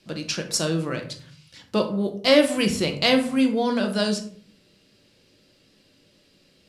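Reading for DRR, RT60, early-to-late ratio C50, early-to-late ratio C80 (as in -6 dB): 4.0 dB, 0.50 s, 10.5 dB, 14.5 dB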